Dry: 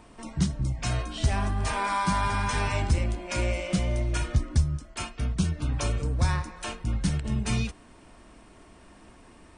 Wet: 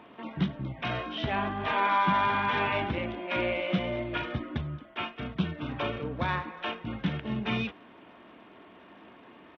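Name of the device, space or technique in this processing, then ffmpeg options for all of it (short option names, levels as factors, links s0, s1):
Bluetooth headset: -af "highpass=210,aresample=8000,aresample=44100,volume=1.33" -ar 32000 -c:a sbc -b:a 64k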